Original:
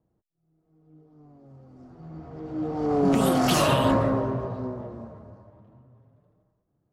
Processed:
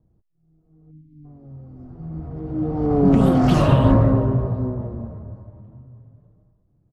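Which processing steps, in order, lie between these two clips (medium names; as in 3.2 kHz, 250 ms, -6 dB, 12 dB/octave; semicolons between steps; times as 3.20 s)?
RIAA curve playback; echo from a far wall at 86 m, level -27 dB; spectral selection erased 0.91–1.25 s, 310–2000 Hz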